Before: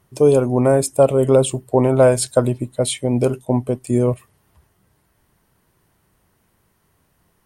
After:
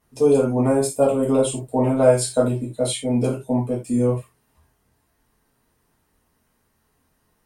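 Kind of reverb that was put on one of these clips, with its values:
reverb whose tail is shaped and stops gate 110 ms falling, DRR −6 dB
level −10.5 dB

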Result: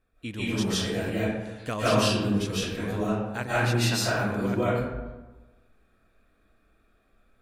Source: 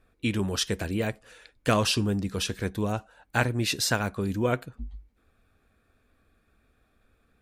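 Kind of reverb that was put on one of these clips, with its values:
comb and all-pass reverb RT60 1.2 s, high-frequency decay 0.5×, pre-delay 110 ms, DRR −10 dB
level −9 dB

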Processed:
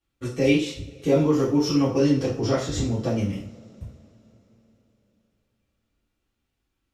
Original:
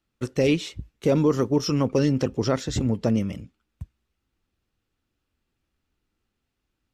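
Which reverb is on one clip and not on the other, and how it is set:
coupled-rooms reverb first 0.42 s, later 3.9 s, from −28 dB, DRR −9.5 dB
level −9.5 dB

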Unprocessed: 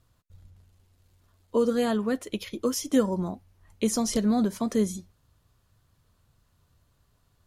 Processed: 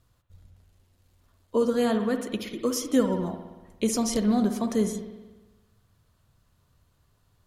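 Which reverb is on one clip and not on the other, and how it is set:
spring reverb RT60 1.2 s, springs 58 ms, chirp 35 ms, DRR 7 dB

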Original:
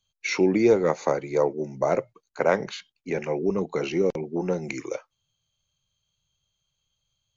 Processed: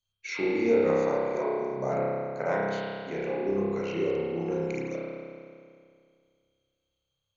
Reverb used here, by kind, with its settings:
spring reverb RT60 2.2 s, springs 30 ms, chirp 25 ms, DRR −6.5 dB
level −10.5 dB

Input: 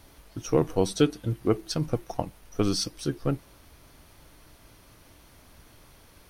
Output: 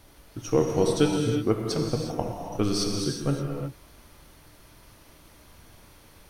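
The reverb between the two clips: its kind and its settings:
reverb whose tail is shaped and stops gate 390 ms flat, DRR 0.5 dB
level −1 dB

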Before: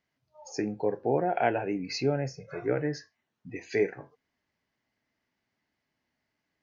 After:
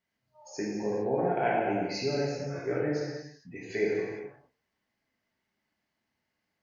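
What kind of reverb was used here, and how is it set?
reverb whose tail is shaped and stops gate 480 ms falling, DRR −5.5 dB
level −6.5 dB

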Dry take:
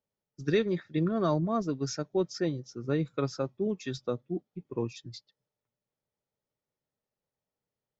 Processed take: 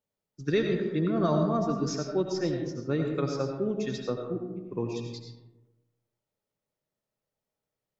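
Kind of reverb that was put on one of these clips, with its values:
comb and all-pass reverb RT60 1.1 s, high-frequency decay 0.4×, pre-delay 50 ms, DRR 2.5 dB

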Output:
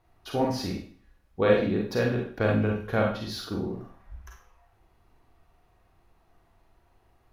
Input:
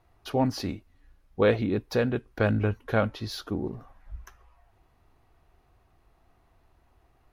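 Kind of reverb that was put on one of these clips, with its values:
four-comb reverb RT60 0.46 s, combs from 33 ms, DRR −0.5 dB
level −2.5 dB

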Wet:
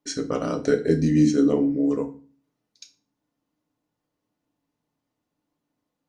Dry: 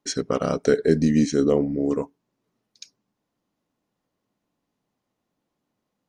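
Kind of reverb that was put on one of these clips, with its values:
feedback delay network reverb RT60 0.38 s, low-frequency decay 1.45×, high-frequency decay 0.85×, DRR 4 dB
level −4 dB

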